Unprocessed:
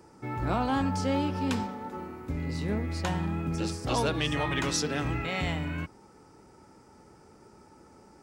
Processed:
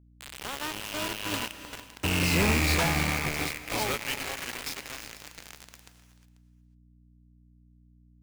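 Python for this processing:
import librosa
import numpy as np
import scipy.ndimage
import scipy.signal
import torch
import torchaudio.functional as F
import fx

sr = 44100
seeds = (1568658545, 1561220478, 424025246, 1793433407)

p1 = fx.rattle_buzz(x, sr, strikes_db=-36.0, level_db=-21.0)
p2 = fx.doppler_pass(p1, sr, speed_mps=39, closest_m=11.0, pass_at_s=2.43)
p3 = scipy.signal.sosfilt(scipy.signal.butter(2, 6800.0, 'lowpass', fs=sr, output='sos'), p2)
p4 = fx.low_shelf(p3, sr, hz=490.0, db=-7.5)
p5 = 10.0 ** (-30.0 / 20.0) * np.tanh(p4 / 10.0 ** (-30.0 / 20.0))
p6 = p4 + (p5 * 10.0 ** (-5.0 / 20.0))
p7 = fx.quant_companded(p6, sr, bits=2)
p8 = fx.add_hum(p7, sr, base_hz=60, snr_db=22)
p9 = p8 + fx.echo_single(p8, sr, ms=490, db=-18.5, dry=0)
p10 = fx.rev_gated(p9, sr, seeds[0], gate_ms=390, shape='rising', drr_db=11.0)
p11 = fx.upward_expand(p10, sr, threshold_db=-35.0, expansion=1.5)
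y = p11 * 10.0 ** (3.5 / 20.0)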